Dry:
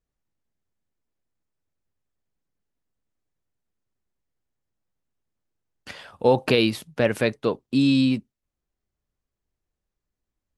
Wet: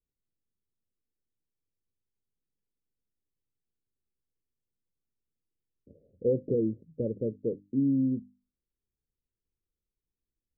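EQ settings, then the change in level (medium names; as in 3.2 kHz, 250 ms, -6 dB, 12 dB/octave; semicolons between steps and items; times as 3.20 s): steep low-pass 530 Hz 72 dB/octave; hum notches 50/100/150/200/250/300 Hz; -6.5 dB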